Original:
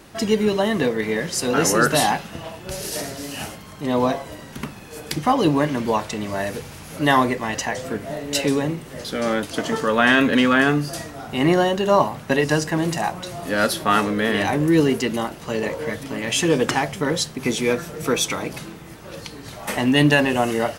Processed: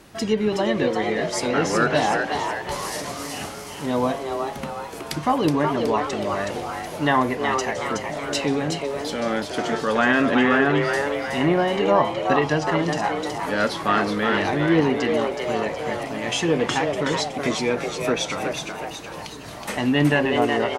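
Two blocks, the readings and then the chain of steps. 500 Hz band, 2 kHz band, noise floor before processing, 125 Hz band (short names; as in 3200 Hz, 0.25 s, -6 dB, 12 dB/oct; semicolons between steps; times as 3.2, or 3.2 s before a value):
-0.5 dB, -1.5 dB, -39 dBFS, -2.5 dB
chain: treble ducked by the level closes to 2300 Hz, closed at -12 dBFS; frequency-shifting echo 0.371 s, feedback 50%, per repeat +140 Hz, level -5 dB; gain -2.5 dB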